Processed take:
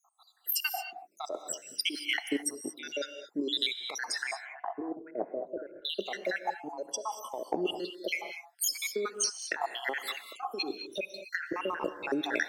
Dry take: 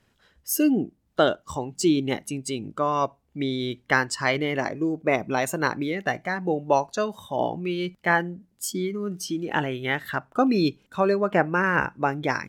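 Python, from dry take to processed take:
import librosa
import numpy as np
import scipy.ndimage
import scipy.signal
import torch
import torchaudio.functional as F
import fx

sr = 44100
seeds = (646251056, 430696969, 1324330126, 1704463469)

y = fx.spec_dropout(x, sr, seeds[0], share_pct=76)
y = scipy.signal.sosfilt(scipy.signal.butter(4, 340.0, 'highpass', fs=sr, output='sos'), y)
y = fx.over_compress(y, sr, threshold_db=-37.0, ratio=-1.0)
y = fx.lowpass(y, sr, hz=1000.0, slope=24, at=(4.31, 5.85))
y = fx.rev_gated(y, sr, seeds[1], gate_ms=250, shape='rising', drr_db=9.0)
y = 10.0 ** (-17.5 / 20.0) * np.tanh(y / 10.0 ** (-17.5 / 20.0))
y = y * 10.0 ** (4.5 / 20.0)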